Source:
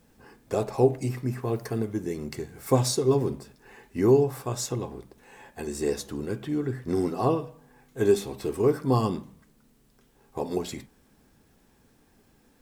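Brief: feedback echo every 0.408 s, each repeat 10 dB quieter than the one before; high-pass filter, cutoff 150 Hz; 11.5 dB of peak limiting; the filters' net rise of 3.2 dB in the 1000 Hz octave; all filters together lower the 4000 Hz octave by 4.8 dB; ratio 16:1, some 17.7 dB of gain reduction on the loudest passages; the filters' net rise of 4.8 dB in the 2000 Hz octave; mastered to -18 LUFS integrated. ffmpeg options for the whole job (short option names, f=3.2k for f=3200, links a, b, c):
-af "highpass=150,equalizer=f=1k:t=o:g=3,equalizer=f=2k:t=o:g=7,equalizer=f=4k:t=o:g=-8,acompressor=threshold=-32dB:ratio=16,alimiter=level_in=7dB:limit=-24dB:level=0:latency=1,volume=-7dB,aecho=1:1:408|816|1224|1632:0.316|0.101|0.0324|0.0104,volume=24dB"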